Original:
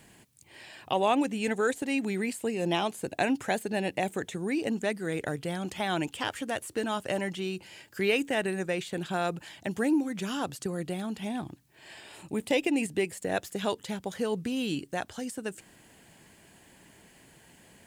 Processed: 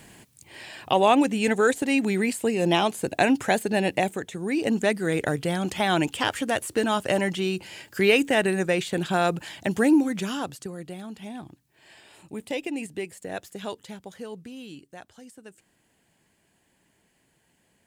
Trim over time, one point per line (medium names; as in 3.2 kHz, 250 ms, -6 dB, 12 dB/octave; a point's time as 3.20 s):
3.99 s +6.5 dB
4.26 s -0.5 dB
4.75 s +7 dB
10.07 s +7 dB
10.76 s -4 dB
13.74 s -4 dB
14.75 s -11 dB